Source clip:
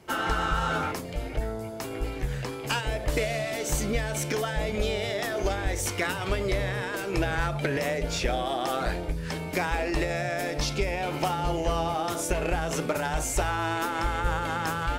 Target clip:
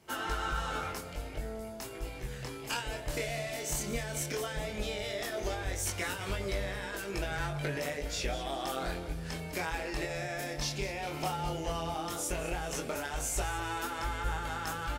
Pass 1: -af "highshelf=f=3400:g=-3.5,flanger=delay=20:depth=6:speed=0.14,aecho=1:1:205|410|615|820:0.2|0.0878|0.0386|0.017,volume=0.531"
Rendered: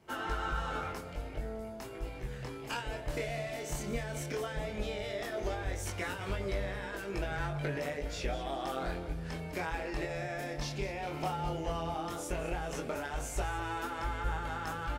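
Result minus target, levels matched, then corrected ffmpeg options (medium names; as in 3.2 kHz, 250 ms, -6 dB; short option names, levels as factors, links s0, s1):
8 kHz band -6.5 dB
-af "highshelf=f=3400:g=6.5,flanger=delay=20:depth=6:speed=0.14,aecho=1:1:205|410|615|820:0.2|0.0878|0.0386|0.017,volume=0.531"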